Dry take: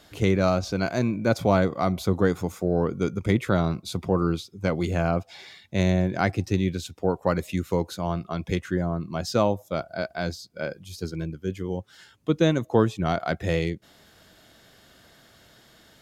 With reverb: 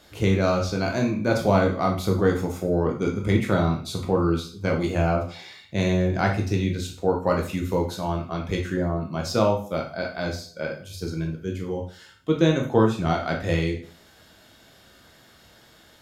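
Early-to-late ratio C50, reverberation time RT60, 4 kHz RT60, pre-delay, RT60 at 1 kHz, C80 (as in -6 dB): 7.5 dB, 0.45 s, 0.40 s, 6 ms, 0.45 s, 12.5 dB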